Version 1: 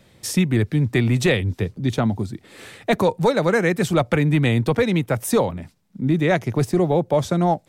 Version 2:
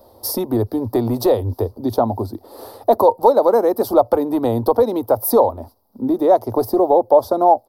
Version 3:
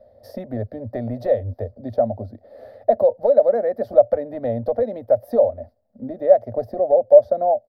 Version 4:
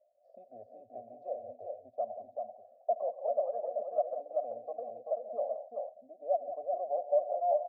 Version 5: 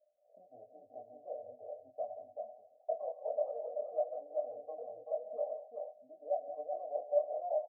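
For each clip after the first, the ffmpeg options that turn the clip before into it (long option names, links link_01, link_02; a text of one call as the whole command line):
ffmpeg -i in.wav -filter_complex "[0:a]firequalizer=gain_entry='entry(110,0);entry(150,-29);entry(230,1);entry(590,11);entry(940,12);entry(1600,-13);entry(2300,-23);entry(4700,3);entry(7100,-14);entry(12000,13)':delay=0.05:min_phase=1,asplit=2[link_01][link_02];[link_02]acompressor=threshold=-19dB:ratio=6,volume=2dB[link_03];[link_01][link_03]amix=inputs=2:normalize=0,volume=-5dB" out.wav
ffmpeg -i in.wav -af "firequalizer=gain_entry='entry(230,0);entry(340,-15);entry(590,10);entry(950,-21);entry(1800,6);entry(2700,-9);entry(8200,-27)':delay=0.05:min_phase=1,volume=-5.5dB" out.wav
ffmpeg -i in.wav -filter_complex "[0:a]asplit=3[link_01][link_02][link_03];[link_01]bandpass=frequency=730:width_type=q:width=8,volume=0dB[link_04];[link_02]bandpass=frequency=1090:width_type=q:width=8,volume=-6dB[link_05];[link_03]bandpass=frequency=2440:width_type=q:width=8,volume=-9dB[link_06];[link_04][link_05][link_06]amix=inputs=3:normalize=0,aecho=1:1:72|131|180|385|429|437:0.126|0.158|0.282|0.631|0.119|0.126,afftdn=noise_reduction=13:noise_floor=-47,volume=-9dB" out.wav
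ffmpeg -i in.wav -af "lowpass=1000,aecho=1:1:6.5:0.59,flanger=delay=20:depth=3.9:speed=0.9,volume=-2dB" out.wav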